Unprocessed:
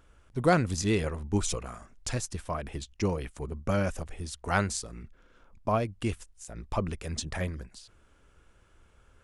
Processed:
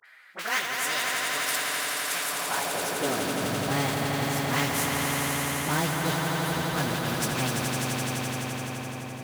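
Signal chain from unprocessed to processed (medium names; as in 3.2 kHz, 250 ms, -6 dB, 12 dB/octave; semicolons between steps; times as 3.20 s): frequency-domain pitch shifter +6 st; treble shelf 3.2 kHz -10 dB; in parallel at -9 dB: Schmitt trigger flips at -44 dBFS; on the sum: band-stop 880 Hz, Q 13; phase dispersion highs, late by 44 ms, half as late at 1.5 kHz; on a send: echo with a slow build-up 85 ms, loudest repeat 5, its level -8 dB; on the sum: high-pass sweep 1.6 kHz -> 160 Hz, 2.19–3.57 s; spectrum-flattening compressor 2:1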